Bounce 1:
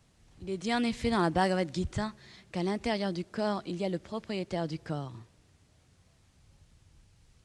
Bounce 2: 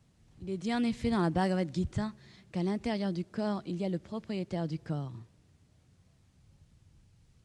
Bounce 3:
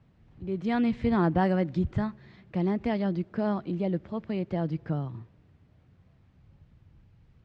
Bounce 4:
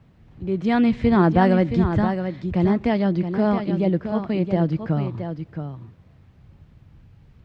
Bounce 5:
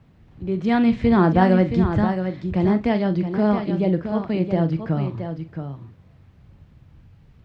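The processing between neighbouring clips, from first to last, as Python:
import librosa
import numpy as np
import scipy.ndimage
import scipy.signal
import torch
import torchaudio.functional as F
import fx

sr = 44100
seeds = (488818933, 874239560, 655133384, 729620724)

y1 = fx.peak_eq(x, sr, hz=150.0, db=7.5, octaves=2.4)
y1 = F.gain(torch.from_numpy(y1), -5.5).numpy()
y2 = scipy.signal.sosfilt(scipy.signal.butter(2, 2400.0, 'lowpass', fs=sr, output='sos'), y1)
y2 = F.gain(torch.from_numpy(y2), 4.5).numpy()
y3 = y2 + 10.0 ** (-8.0 / 20.0) * np.pad(y2, (int(671 * sr / 1000.0), 0))[:len(y2)]
y3 = F.gain(torch.from_numpy(y3), 7.5).numpy()
y4 = fx.doubler(y3, sr, ms=43.0, db=-11.5)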